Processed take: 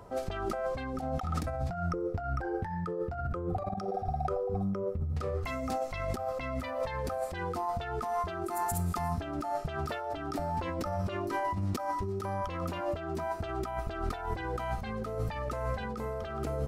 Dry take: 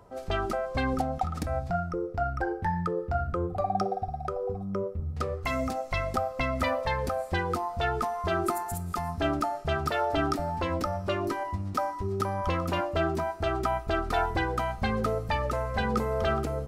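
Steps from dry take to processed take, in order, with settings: compressor with a negative ratio -34 dBFS, ratio -1

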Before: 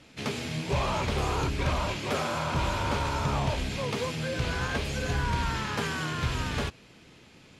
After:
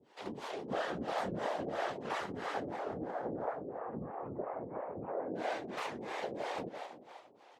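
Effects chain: ring modulator 620 Hz; 2.60–5.35 s: Gaussian low-pass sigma 6.6 samples; whisper effect; high-pass 200 Hz 12 dB/octave; tilt EQ -2.5 dB/octave; frequency-shifting echo 169 ms, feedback 59%, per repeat +37 Hz, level -8 dB; harmonic tremolo 3 Hz, depth 100%, crossover 460 Hz; warped record 78 rpm, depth 250 cents; trim -3 dB

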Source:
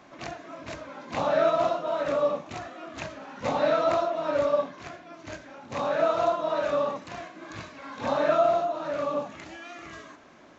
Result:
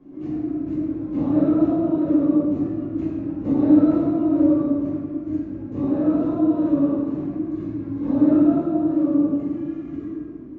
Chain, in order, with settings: FFT filter 200 Hz 0 dB, 310 Hz +11 dB, 640 Hz -18 dB, 4.8 kHz -29 dB; reverberation RT60 1.9 s, pre-delay 5 ms, DRR -9 dB

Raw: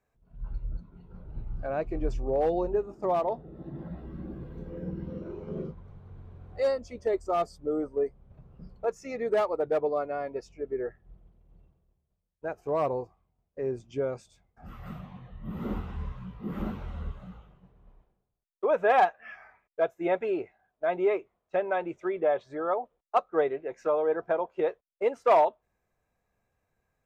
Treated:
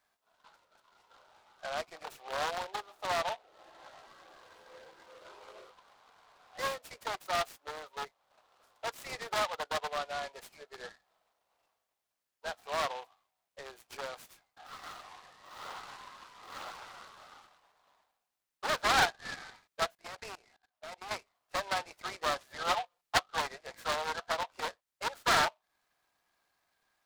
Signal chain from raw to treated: one-sided wavefolder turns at -25 dBFS; tilt shelf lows -5.5 dB, about 1.1 kHz; in parallel at -1 dB: compression 12:1, threshold -43 dBFS, peak gain reduction 23.5 dB; on the sum: high-pass 700 Hz 24 dB/octave; peaking EQ 4.1 kHz -9 dB 0.92 oct; 19.95–21.11 s: level held to a coarse grid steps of 22 dB; 22.50–23.18 s: comb 5.7 ms, depth 71%; delay time shaken by noise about 2.2 kHz, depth 0.066 ms

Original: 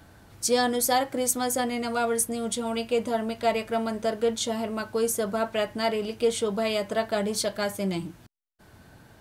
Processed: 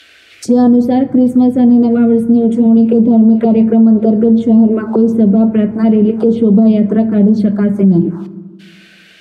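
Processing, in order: bass shelf 83 Hz +6 dB; auto-wah 220–3200 Hz, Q 2.5, down, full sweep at -24.5 dBFS; touch-sensitive phaser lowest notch 150 Hz, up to 2.4 kHz, full sweep at -28.5 dBFS; on a send at -12 dB: reverberation RT60 1.4 s, pre-delay 4 ms; on the sum: loudness maximiser +27.5 dB; trim -1 dB

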